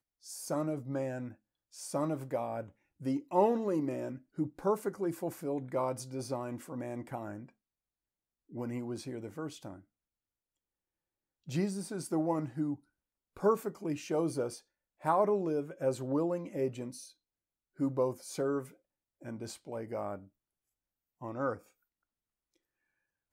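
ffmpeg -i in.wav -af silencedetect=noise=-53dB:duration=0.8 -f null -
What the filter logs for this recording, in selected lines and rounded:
silence_start: 7.49
silence_end: 8.50 | silence_duration: 1.01
silence_start: 9.81
silence_end: 11.47 | silence_duration: 1.66
silence_start: 20.27
silence_end: 21.21 | silence_duration: 0.94
silence_start: 21.66
silence_end: 23.33 | silence_duration: 1.67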